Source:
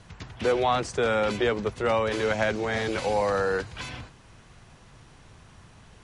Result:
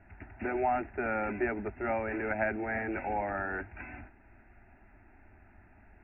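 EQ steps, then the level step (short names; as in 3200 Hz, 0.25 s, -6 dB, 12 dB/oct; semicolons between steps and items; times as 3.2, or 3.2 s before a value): brick-wall FIR low-pass 2800 Hz; air absorption 190 m; fixed phaser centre 730 Hz, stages 8; -2.0 dB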